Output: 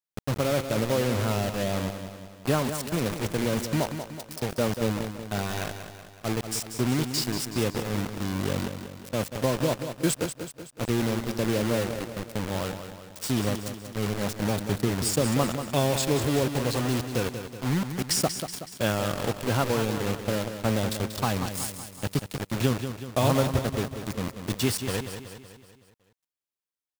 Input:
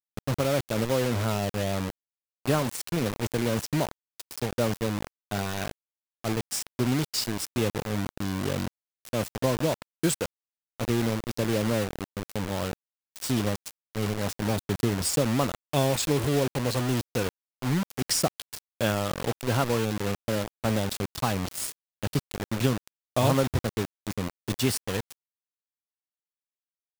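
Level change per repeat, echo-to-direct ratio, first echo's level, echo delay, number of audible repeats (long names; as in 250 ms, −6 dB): −5.5 dB, −7.5 dB, −9.0 dB, 187 ms, 5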